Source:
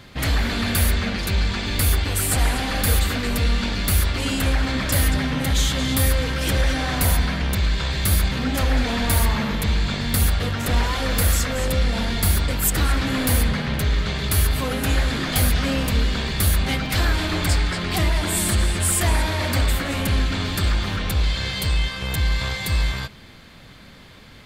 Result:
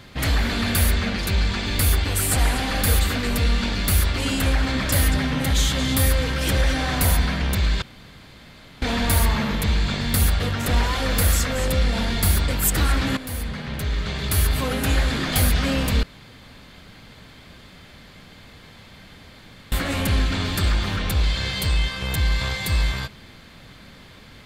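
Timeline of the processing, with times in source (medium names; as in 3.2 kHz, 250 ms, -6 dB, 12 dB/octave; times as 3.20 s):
7.82–8.82 s: room tone
13.17–14.57 s: fade in, from -14 dB
16.03–19.72 s: room tone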